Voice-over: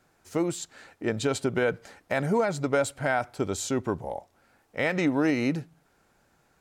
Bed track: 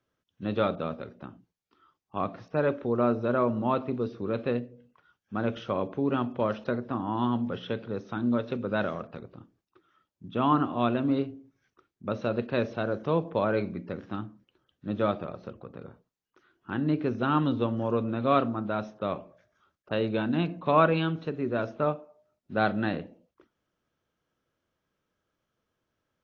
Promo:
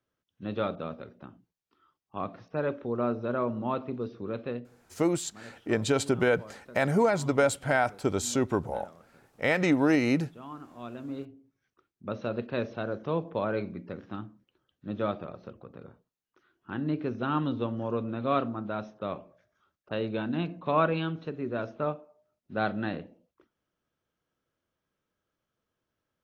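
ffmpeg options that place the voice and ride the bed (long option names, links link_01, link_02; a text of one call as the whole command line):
ffmpeg -i stem1.wav -i stem2.wav -filter_complex "[0:a]adelay=4650,volume=1dB[link_01];[1:a]volume=12dB,afade=type=out:start_time=4.26:duration=0.9:silence=0.16788,afade=type=in:start_time=10.69:duration=1.41:silence=0.158489[link_02];[link_01][link_02]amix=inputs=2:normalize=0" out.wav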